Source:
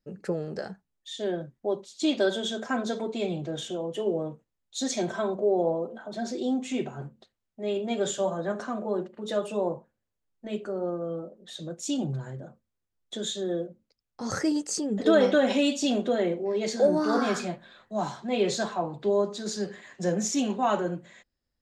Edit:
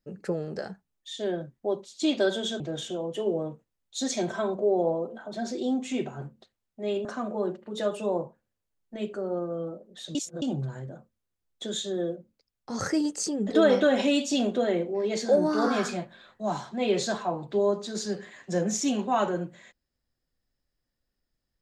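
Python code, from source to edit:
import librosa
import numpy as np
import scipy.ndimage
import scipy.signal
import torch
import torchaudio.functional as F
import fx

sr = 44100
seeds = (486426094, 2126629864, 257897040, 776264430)

y = fx.edit(x, sr, fx.cut(start_s=2.6, length_s=0.8),
    fx.cut(start_s=7.85, length_s=0.71),
    fx.reverse_span(start_s=11.66, length_s=0.27), tone=tone)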